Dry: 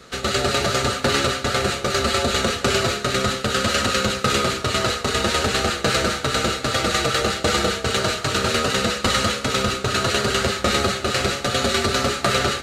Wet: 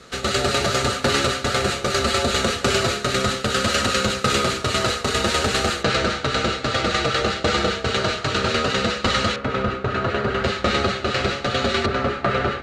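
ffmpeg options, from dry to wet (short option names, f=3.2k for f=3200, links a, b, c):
-af "asetnsamples=n=441:p=0,asendcmd='5.83 lowpass f 5000;9.36 lowpass f 1900;10.44 lowpass f 4100;11.86 lowpass f 2100',lowpass=12k"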